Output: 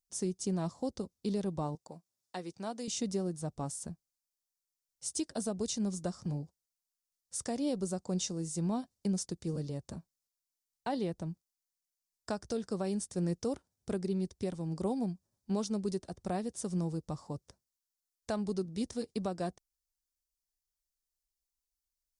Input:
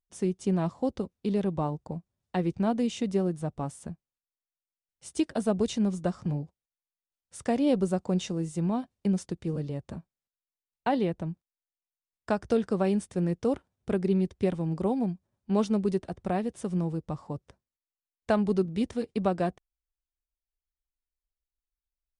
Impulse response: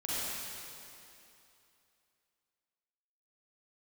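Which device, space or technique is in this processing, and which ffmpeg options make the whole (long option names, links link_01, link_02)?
over-bright horn tweeter: -filter_complex "[0:a]highshelf=frequency=3800:width_type=q:width=1.5:gain=10,alimiter=limit=-20dB:level=0:latency=1:release=460,asettb=1/sr,asplit=3[link_01][link_02][link_03];[link_01]atrim=end=1.754[link_04];[link_02]atrim=start=1.75:end=2.88,asetpts=PTS-STARTPTS,afade=type=in:duration=0.004:curve=qsin,afade=type=out:start_time=1.126:duration=0.004:curve=qsin,highpass=frequency=630:poles=1[link_05];[link_03]atrim=start=2.876[link_06];[link_04][link_05]acrossfade=duration=0.004:curve1=hsin:curve2=qsin[link_07];[link_07][link_06]acrossfade=duration=0.004:curve1=qsin:curve2=hsin,volume=-4.5dB"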